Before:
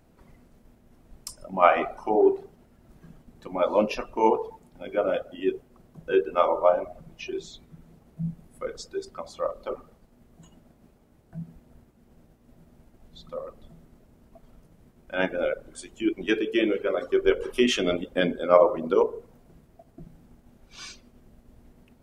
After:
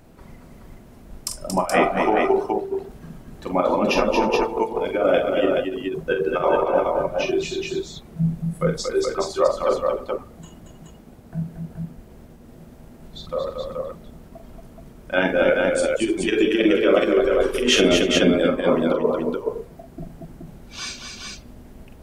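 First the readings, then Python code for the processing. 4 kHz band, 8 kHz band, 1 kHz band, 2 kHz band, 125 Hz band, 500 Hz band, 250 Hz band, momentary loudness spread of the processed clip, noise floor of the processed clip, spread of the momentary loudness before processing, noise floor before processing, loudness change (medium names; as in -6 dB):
+9.5 dB, +11.5 dB, +3.5 dB, +7.5 dB, +11.0 dB, +5.0 dB, +7.5 dB, 18 LU, -46 dBFS, 21 LU, -59 dBFS, +4.5 dB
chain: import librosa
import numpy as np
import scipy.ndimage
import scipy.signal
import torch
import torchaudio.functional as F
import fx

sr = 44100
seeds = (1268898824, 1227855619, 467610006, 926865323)

p1 = fx.over_compress(x, sr, threshold_db=-25.0, ratio=-0.5)
p2 = p1 + fx.echo_multitap(p1, sr, ms=(44, 229, 304, 425), db=(-7.0, -5.0, -18.0, -3.5), dry=0)
y = p2 * librosa.db_to_amplitude(6.0)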